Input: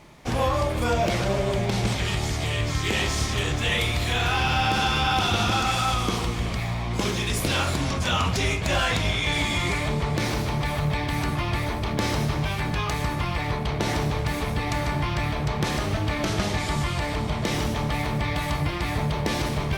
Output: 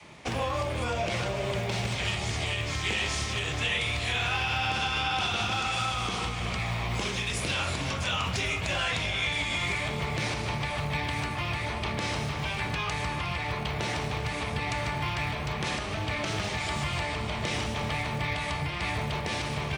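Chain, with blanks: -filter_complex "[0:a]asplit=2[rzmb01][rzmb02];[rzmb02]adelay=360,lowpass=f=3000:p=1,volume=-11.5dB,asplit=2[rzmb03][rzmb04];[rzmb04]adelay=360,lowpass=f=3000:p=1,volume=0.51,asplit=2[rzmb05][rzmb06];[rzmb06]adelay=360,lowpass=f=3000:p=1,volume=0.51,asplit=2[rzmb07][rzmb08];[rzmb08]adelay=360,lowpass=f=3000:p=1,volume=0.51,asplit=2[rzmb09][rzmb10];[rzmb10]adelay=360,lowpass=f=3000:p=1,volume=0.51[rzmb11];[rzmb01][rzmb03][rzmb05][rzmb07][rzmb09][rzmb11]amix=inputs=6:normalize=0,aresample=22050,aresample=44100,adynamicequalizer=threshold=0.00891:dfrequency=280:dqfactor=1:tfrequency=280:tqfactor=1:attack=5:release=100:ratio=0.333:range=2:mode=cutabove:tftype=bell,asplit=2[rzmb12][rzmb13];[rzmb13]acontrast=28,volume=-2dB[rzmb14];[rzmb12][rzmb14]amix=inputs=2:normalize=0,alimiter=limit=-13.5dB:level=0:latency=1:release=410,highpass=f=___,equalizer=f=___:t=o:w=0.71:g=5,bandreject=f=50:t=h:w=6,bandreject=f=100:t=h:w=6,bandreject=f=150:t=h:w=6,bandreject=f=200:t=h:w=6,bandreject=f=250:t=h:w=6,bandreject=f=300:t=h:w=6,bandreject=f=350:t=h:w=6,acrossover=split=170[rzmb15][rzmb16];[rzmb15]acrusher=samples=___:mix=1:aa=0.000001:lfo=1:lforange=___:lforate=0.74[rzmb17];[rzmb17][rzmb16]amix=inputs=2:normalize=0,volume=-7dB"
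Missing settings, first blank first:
65, 2600, 17, 17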